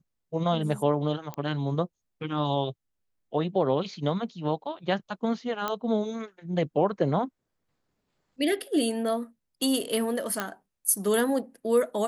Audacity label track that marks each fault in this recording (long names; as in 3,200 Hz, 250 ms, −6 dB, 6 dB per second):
1.340000	1.340000	click −21 dBFS
5.680000	5.680000	click −14 dBFS
10.400000	10.400000	click −13 dBFS